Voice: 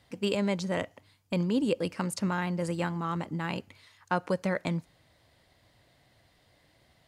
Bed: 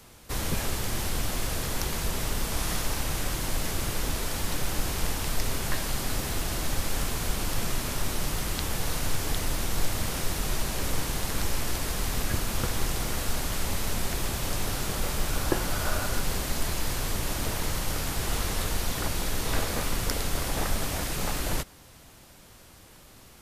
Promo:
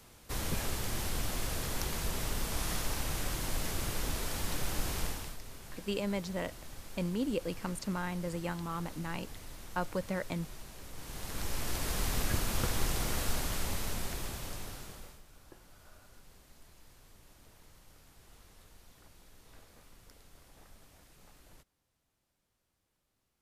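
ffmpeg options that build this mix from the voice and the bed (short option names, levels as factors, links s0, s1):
-filter_complex "[0:a]adelay=5650,volume=0.501[s0];[1:a]volume=3.16,afade=t=out:st=4.98:d=0.4:silence=0.211349,afade=t=in:st=10.94:d=1.04:silence=0.16788,afade=t=out:st=13.23:d=1.99:silence=0.0501187[s1];[s0][s1]amix=inputs=2:normalize=0"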